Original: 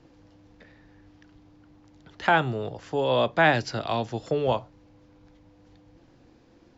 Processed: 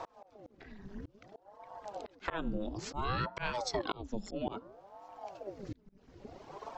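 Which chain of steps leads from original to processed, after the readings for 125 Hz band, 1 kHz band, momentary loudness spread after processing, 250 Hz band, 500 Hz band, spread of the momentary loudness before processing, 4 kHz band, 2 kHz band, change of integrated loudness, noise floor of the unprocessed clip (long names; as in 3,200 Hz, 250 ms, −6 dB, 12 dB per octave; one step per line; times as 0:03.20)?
−11.5 dB, −12.0 dB, 19 LU, −8.0 dB, −14.0 dB, 10 LU, −10.0 dB, −15.5 dB, −14.5 dB, −58 dBFS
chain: hum removal 123.1 Hz, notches 12
reverb reduction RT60 1.9 s
parametric band 98 Hz +13 dB 0.87 octaves
volume swells 732 ms
downward compressor 6 to 1, threshold −44 dBFS, peak gain reduction 15 dB
ring modulator whose carrier an LFO sweeps 450 Hz, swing 80%, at 0.59 Hz
level +14.5 dB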